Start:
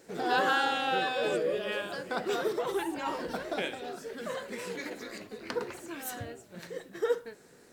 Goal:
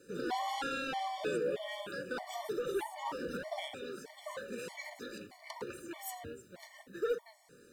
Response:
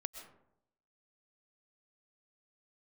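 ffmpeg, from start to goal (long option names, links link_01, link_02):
-filter_complex "[0:a]acrossover=split=330|5800[link_01][link_02][link_03];[link_02]asoftclip=type=tanh:threshold=-28dB[link_04];[link_01][link_04][link_03]amix=inputs=3:normalize=0[link_05];[1:a]atrim=start_sample=2205,atrim=end_sample=4410,asetrate=40131,aresample=44100[link_06];[link_05][link_06]afir=irnorm=-1:irlink=0,afftfilt=real='re*gt(sin(2*PI*1.6*pts/sr)*(1-2*mod(floor(b*sr/1024/590),2)),0)':imag='im*gt(sin(2*PI*1.6*pts/sr)*(1-2*mod(floor(b*sr/1024/590),2)),0)':win_size=1024:overlap=0.75,volume=1dB"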